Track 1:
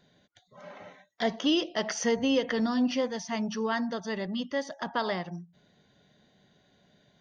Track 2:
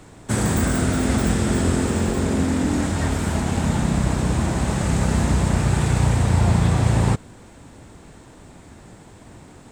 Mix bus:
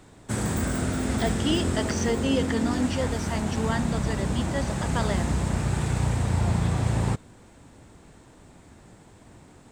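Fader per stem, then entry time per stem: −0.5, −6.5 decibels; 0.00, 0.00 seconds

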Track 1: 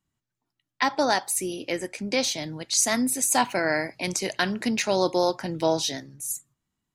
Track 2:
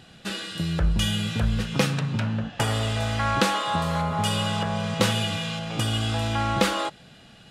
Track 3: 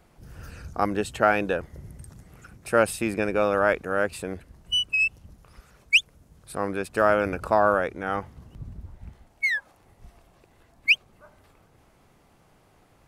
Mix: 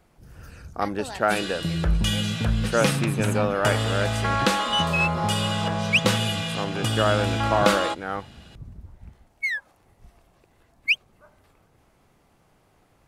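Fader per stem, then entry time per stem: −15.0, +0.5, −2.0 decibels; 0.00, 1.05, 0.00 seconds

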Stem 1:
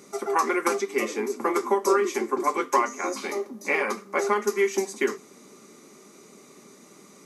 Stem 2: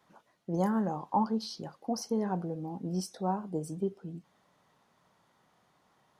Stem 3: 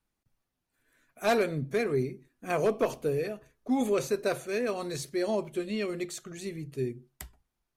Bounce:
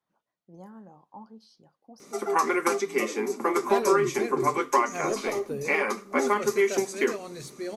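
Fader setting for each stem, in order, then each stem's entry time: −0.5, −17.5, −5.0 decibels; 2.00, 0.00, 2.45 seconds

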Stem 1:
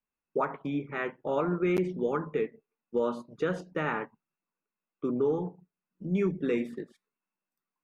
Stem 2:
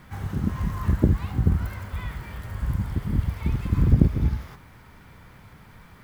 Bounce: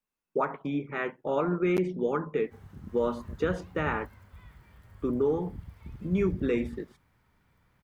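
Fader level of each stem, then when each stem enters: +1.0, −19.0 decibels; 0.00, 2.40 seconds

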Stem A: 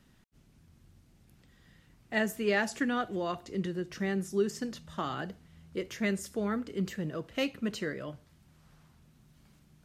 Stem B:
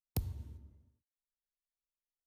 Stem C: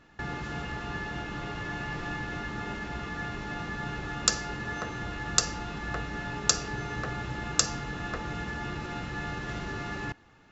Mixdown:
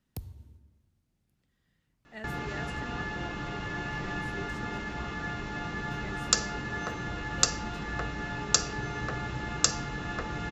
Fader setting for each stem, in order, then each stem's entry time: −14.5, −4.0, 0.0 decibels; 0.00, 0.00, 2.05 seconds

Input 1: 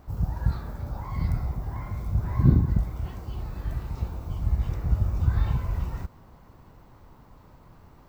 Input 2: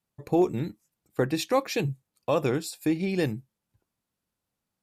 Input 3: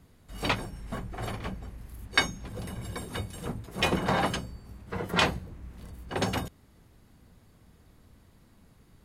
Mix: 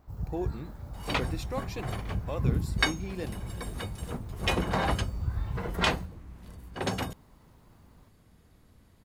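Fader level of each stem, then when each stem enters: −8.5, −11.5, −2.0 decibels; 0.00, 0.00, 0.65 seconds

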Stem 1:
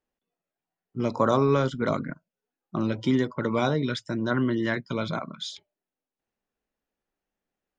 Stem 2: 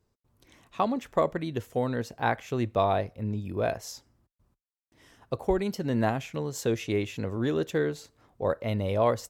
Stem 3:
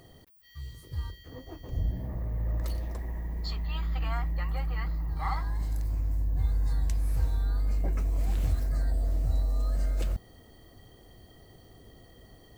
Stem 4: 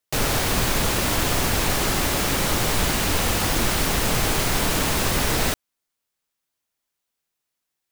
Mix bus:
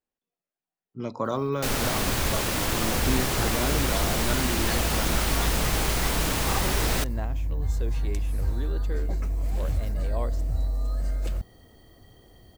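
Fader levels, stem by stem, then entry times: −6.0, −10.5, +0.5, −4.5 decibels; 0.00, 1.15, 1.25, 1.50 seconds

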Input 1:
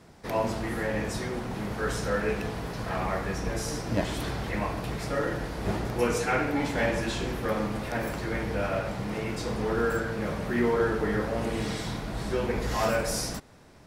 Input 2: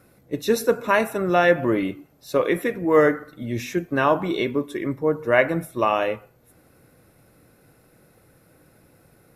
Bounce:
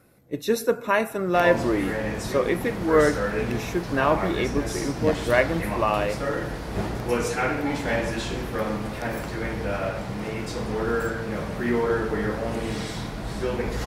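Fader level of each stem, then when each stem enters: +1.5, −2.5 decibels; 1.10, 0.00 seconds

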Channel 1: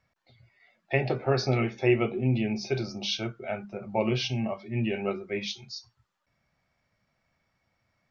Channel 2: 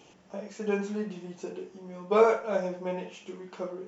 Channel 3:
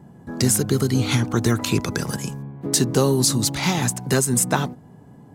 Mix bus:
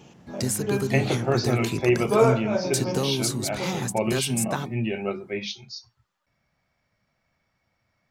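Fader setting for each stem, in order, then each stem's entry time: +1.5, +2.0, −8.0 decibels; 0.00, 0.00, 0.00 seconds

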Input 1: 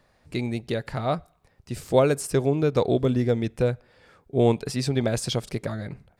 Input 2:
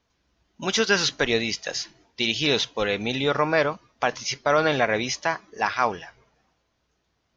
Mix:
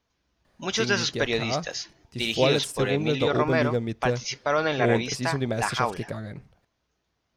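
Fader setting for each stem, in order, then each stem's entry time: −3.5, −3.5 decibels; 0.45, 0.00 seconds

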